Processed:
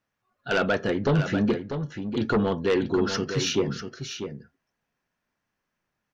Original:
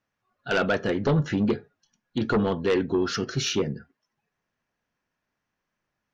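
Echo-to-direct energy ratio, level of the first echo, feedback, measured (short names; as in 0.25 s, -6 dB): -8.5 dB, -8.5 dB, no steady repeat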